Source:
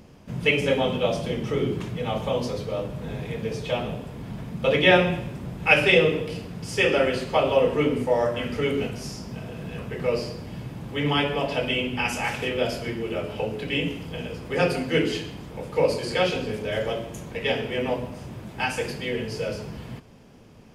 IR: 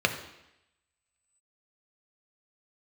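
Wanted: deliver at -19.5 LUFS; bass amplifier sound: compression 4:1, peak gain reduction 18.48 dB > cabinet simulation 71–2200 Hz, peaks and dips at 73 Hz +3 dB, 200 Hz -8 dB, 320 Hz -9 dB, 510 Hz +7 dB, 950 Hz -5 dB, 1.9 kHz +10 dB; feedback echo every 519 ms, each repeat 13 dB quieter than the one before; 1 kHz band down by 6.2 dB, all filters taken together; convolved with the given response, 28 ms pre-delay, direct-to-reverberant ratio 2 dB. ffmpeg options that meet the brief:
-filter_complex "[0:a]equalizer=f=1000:t=o:g=-8,aecho=1:1:519|1038|1557:0.224|0.0493|0.0108,asplit=2[s0][s1];[1:a]atrim=start_sample=2205,adelay=28[s2];[s1][s2]afir=irnorm=-1:irlink=0,volume=0.178[s3];[s0][s3]amix=inputs=2:normalize=0,acompressor=threshold=0.0224:ratio=4,highpass=f=71:w=0.5412,highpass=f=71:w=1.3066,equalizer=f=73:t=q:w=4:g=3,equalizer=f=200:t=q:w=4:g=-8,equalizer=f=320:t=q:w=4:g=-9,equalizer=f=510:t=q:w=4:g=7,equalizer=f=950:t=q:w=4:g=-5,equalizer=f=1900:t=q:w=4:g=10,lowpass=f=2200:w=0.5412,lowpass=f=2200:w=1.3066,volume=5.01"

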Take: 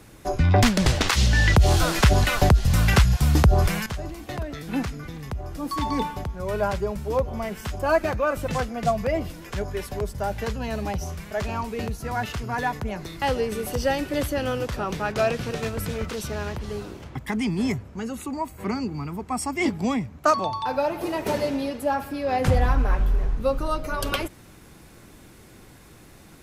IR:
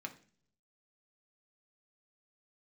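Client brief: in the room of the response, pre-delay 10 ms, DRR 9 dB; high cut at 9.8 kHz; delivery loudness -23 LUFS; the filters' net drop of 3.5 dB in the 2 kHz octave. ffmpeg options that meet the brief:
-filter_complex "[0:a]lowpass=9800,equalizer=f=2000:t=o:g=-4.5,asplit=2[s0][s1];[1:a]atrim=start_sample=2205,adelay=10[s2];[s1][s2]afir=irnorm=-1:irlink=0,volume=0.422[s3];[s0][s3]amix=inputs=2:normalize=0,volume=1.26"

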